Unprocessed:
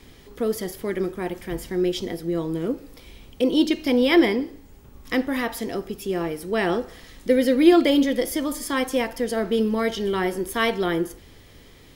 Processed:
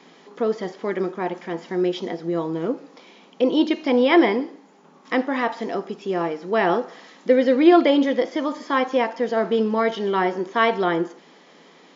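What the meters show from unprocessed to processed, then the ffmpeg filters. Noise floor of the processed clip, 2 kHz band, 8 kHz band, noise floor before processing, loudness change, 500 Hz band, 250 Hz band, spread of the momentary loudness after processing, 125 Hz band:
-51 dBFS, +1.5 dB, under -10 dB, -49 dBFS, +1.5 dB, +2.5 dB, 0.0 dB, 13 LU, -1.5 dB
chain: -filter_complex "[0:a]acrossover=split=4300[s0][s1];[s1]acompressor=threshold=0.00501:ratio=4:attack=1:release=60[s2];[s0][s2]amix=inputs=2:normalize=0,equalizer=f=900:w=0.86:g=9.5,afftfilt=real='re*between(b*sr/4096,160,7300)':imag='im*between(b*sr/4096,160,7300)':win_size=4096:overlap=0.75,volume=0.841"

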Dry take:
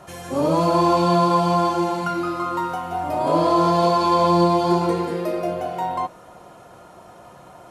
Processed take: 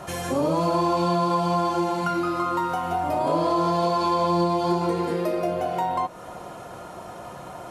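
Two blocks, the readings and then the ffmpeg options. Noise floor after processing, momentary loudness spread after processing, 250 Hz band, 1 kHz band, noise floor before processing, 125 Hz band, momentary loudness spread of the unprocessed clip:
-40 dBFS, 17 LU, -4.0 dB, -3.5 dB, -45 dBFS, -4.0 dB, 9 LU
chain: -af "acompressor=threshold=0.0282:ratio=2.5,volume=2"

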